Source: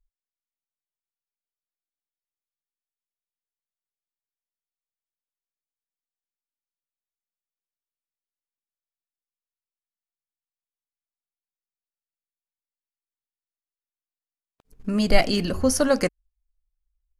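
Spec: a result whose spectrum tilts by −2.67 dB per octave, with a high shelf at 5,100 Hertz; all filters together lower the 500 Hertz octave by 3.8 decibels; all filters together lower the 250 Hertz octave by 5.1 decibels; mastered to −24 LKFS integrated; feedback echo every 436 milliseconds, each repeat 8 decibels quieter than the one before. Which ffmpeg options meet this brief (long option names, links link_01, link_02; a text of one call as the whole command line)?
ffmpeg -i in.wav -af "equalizer=frequency=250:width_type=o:gain=-5.5,equalizer=frequency=500:width_type=o:gain=-3.5,highshelf=frequency=5100:gain=7.5,aecho=1:1:436|872|1308|1744|2180:0.398|0.159|0.0637|0.0255|0.0102" out.wav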